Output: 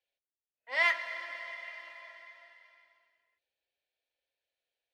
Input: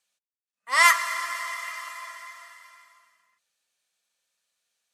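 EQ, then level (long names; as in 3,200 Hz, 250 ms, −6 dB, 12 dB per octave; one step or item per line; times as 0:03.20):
high-frequency loss of the air 220 metres
parametric band 6,900 Hz −11.5 dB 1.1 octaves
phaser with its sweep stopped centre 490 Hz, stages 4
0.0 dB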